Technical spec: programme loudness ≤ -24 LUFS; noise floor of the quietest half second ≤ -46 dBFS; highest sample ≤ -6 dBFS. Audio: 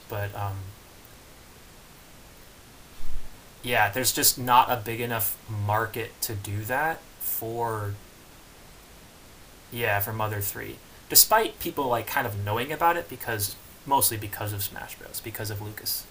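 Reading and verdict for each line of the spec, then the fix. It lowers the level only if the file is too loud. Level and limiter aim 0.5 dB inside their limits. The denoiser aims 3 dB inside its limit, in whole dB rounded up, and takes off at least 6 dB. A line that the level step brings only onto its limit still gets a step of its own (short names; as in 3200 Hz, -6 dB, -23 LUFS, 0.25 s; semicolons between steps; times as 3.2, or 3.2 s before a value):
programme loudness -25.5 LUFS: OK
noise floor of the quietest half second -49 dBFS: OK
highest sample -2.0 dBFS: fail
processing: limiter -6.5 dBFS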